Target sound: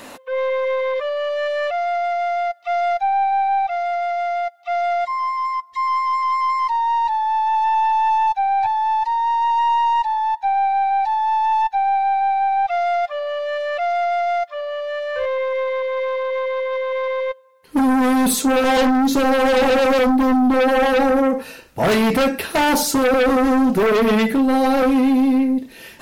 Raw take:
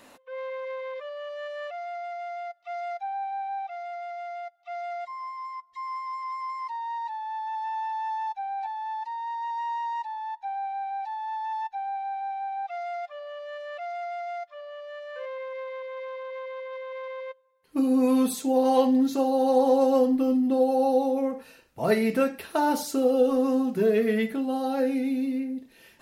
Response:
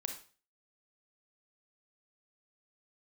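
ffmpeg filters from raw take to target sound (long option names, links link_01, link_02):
-af "asoftclip=type=tanh:threshold=-18dB,aeval=exprs='0.126*(cos(1*acos(clip(val(0)/0.126,-1,1)))-cos(1*PI/2))+0.0447*(cos(5*acos(clip(val(0)/0.126,-1,1)))-cos(5*PI/2))+0.00562*(cos(6*acos(clip(val(0)/0.126,-1,1)))-cos(6*PI/2))+0.0112*(cos(7*acos(clip(val(0)/0.126,-1,1)))-cos(7*PI/2))':channel_layout=same,volume=8dB"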